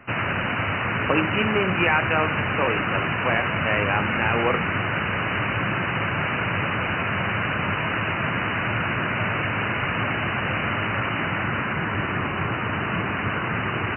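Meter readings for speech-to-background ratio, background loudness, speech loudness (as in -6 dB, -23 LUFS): -1.0 dB, -24.0 LUFS, -25.0 LUFS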